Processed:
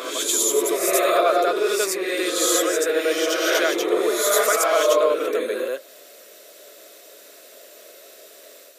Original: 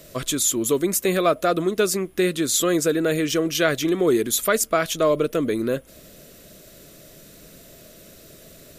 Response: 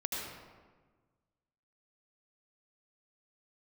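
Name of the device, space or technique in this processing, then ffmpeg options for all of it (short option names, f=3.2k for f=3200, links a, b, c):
ghost voice: -filter_complex "[0:a]areverse[a];[1:a]atrim=start_sample=2205[b];[a][b]afir=irnorm=-1:irlink=0,areverse,highpass=f=430:w=0.5412,highpass=f=430:w=1.3066"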